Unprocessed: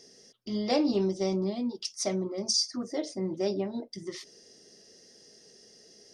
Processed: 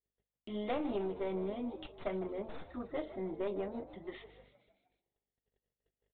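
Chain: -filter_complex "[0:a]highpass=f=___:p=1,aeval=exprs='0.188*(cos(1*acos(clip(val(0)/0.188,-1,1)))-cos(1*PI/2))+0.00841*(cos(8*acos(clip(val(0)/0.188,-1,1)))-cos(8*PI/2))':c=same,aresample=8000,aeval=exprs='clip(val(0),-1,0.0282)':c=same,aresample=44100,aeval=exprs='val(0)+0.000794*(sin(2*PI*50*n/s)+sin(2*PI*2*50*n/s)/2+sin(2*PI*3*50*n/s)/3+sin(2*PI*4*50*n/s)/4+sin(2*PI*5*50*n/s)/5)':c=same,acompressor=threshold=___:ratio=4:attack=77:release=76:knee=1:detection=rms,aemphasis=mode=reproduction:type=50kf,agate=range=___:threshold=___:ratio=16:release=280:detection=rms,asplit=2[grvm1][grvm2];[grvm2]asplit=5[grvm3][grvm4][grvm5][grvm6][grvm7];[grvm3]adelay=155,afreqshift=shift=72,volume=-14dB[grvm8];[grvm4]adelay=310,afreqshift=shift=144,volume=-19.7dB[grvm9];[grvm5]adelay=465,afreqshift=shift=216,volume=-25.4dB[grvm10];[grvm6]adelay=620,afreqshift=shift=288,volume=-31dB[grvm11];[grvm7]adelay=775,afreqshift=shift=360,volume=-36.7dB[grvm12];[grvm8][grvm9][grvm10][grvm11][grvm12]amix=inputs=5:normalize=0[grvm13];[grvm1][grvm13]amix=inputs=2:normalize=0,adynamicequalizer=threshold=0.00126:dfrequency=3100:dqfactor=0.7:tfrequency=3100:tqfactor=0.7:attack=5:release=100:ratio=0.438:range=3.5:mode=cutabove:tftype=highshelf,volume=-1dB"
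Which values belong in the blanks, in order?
520, -35dB, -38dB, -56dB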